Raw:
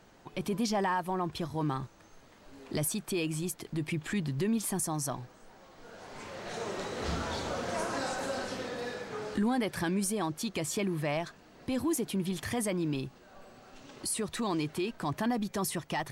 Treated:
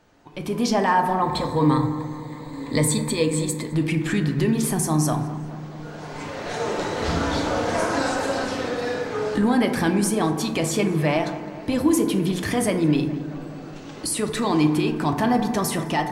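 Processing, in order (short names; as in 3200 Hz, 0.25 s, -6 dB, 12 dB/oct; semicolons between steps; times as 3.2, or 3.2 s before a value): 1.22–3.74 ripple EQ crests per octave 1, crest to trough 14 dB; AGC gain up to 10 dB; high shelf 7200 Hz -4 dB; darkening echo 0.21 s, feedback 76%, low-pass 2800 Hz, level -16 dB; FDN reverb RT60 1.2 s, low-frequency decay 1.05×, high-frequency decay 0.35×, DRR 4.5 dB; gain -1 dB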